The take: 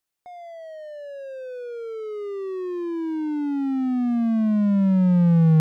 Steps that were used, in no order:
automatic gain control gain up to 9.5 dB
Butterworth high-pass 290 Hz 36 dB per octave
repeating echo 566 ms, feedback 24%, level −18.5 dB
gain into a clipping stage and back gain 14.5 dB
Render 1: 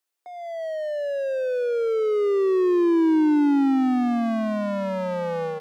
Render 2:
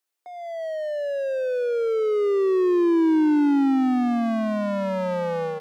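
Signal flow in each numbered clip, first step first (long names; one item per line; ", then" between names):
automatic gain control, then Butterworth high-pass, then gain into a clipping stage and back, then repeating echo
Butterworth high-pass, then automatic gain control, then repeating echo, then gain into a clipping stage and back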